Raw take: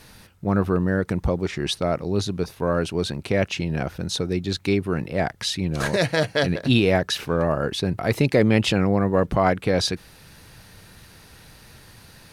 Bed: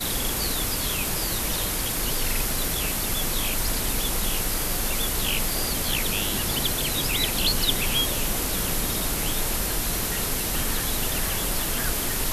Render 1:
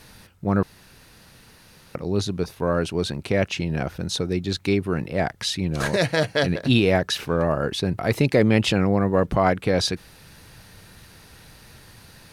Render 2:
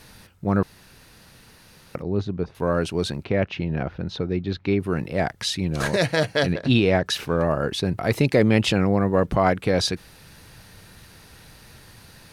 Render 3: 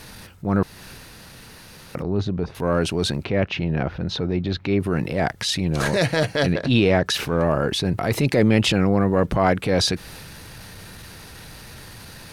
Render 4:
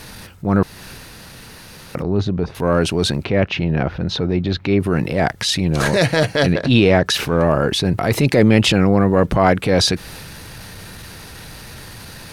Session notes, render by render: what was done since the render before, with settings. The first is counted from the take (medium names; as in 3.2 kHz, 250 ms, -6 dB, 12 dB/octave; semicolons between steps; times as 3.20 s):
0.63–1.95 s: room tone
2.02–2.55 s: tape spacing loss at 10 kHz 31 dB; 3.24–4.80 s: distance through air 270 m; 6.53–7.06 s: distance through air 65 m
transient shaper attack -7 dB, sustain +3 dB; in parallel at +2 dB: compression, threshold -31 dBFS, peak gain reduction 16 dB
trim +4.5 dB